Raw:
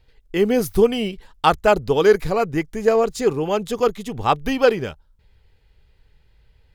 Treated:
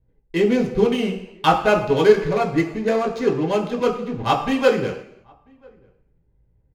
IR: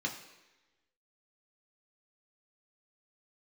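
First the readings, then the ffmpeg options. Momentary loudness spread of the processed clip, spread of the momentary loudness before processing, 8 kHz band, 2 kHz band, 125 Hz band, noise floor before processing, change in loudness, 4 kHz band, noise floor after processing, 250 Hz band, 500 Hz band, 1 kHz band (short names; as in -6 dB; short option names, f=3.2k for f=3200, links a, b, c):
8 LU, 9 LU, n/a, +0.5 dB, +1.5 dB, -58 dBFS, -0.5 dB, 0.0 dB, -63 dBFS, +2.0 dB, -1.0 dB, 0.0 dB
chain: -filter_complex "[0:a]adynamicsmooth=sensitivity=6:basefreq=530,asplit=2[a][b];[b]adelay=991.3,volume=-30dB,highshelf=f=4k:g=-22.3[c];[a][c]amix=inputs=2:normalize=0[d];[1:a]atrim=start_sample=2205,afade=t=out:st=0.41:d=0.01,atrim=end_sample=18522[e];[d][e]afir=irnorm=-1:irlink=0,volume=-3.5dB"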